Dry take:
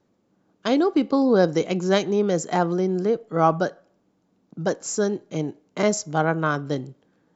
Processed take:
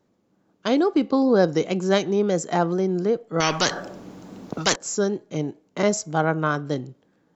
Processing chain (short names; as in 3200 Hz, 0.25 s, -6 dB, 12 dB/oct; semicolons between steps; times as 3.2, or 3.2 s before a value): wow and flutter 41 cents; 3.4–4.76 spectral compressor 4:1